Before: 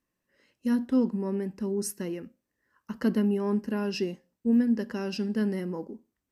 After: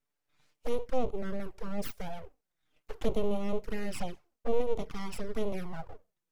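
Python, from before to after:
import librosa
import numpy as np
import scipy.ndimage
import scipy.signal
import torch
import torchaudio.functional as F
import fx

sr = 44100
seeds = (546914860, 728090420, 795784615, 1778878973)

y = np.abs(x)
y = fx.env_flanger(y, sr, rest_ms=6.9, full_db=-24.0)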